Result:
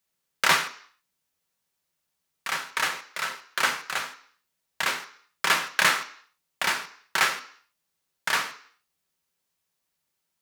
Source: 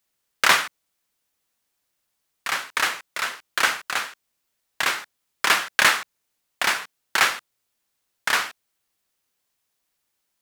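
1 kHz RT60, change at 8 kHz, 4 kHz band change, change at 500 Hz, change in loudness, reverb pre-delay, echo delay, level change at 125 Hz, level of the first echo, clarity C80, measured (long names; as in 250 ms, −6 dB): 0.60 s, −3.5 dB, −3.5 dB, −3.0 dB, −3.5 dB, 3 ms, no echo audible, can't be measured, no echo audible, 17.0 dB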